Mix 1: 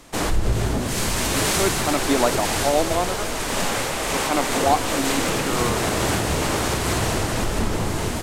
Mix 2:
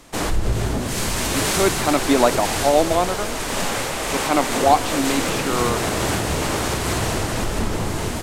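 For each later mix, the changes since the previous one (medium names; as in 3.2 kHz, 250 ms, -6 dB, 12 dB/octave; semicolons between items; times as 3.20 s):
speech +4.0 dB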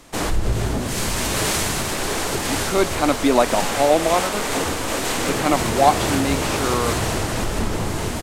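speech: entry +1.15 s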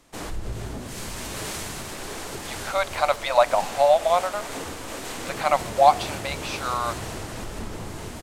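speech: add brick-wall FIR high-pass 510 Hz; background -11.0 dB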